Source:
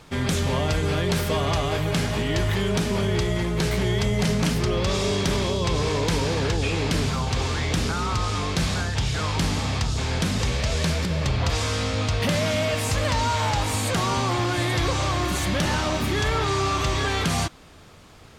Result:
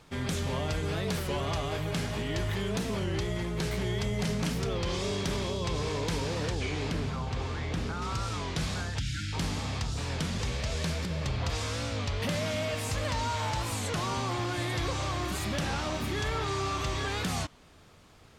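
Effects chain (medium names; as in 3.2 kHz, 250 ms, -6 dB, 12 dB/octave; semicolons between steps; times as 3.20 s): 6.91–8.02 s: treble shelf 3.9 kHz -11 dB; 8.99–9.33 s: spectral selection erased 330–1300 Hz; warped record 33 1/3 rpm, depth 160 cents; trim -8 dB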